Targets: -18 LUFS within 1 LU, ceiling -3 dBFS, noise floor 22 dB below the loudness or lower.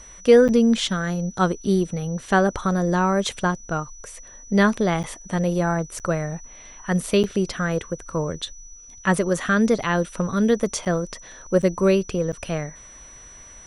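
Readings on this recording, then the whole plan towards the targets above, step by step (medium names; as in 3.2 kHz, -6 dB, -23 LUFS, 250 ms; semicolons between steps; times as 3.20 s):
dropouts 7; longest dropout 8.0 ms; steady tone 5.9 kHz; tone level -43 dBFS; loudness -22.0 LUFS; peak level -3.5 dBFS; loudness target -18.0 LUFS
-> interpolate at 0.48/5.03/5.99/7.23/10.85/11.62/12.32 s, 8 ms; band-stop 5.9 kHz, Q 30; trim +4 dB; peak limiter -3 dBFS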